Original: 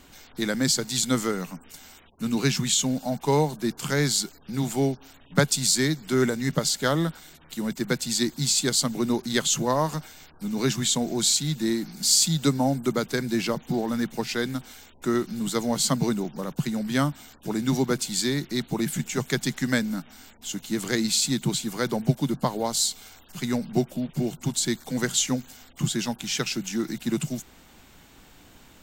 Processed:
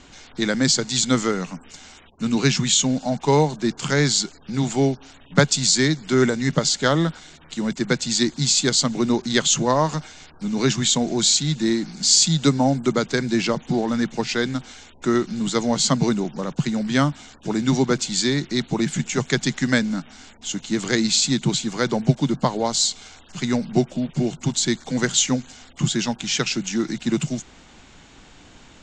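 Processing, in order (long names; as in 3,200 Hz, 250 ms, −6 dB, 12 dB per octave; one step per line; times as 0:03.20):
Chebyshev low-pass filter 7,200 Hz, order 4
level +5.5 dB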